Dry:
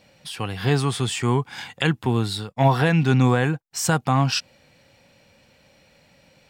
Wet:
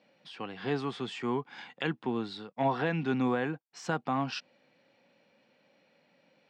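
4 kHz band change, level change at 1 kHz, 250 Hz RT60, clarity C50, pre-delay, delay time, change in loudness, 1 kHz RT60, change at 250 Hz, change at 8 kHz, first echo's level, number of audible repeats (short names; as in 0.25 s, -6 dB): -13.5 dB, -9.0 dB, none, none, none, none, -11.5 dB, none, -9.5 dB, -23.0 dB, none, none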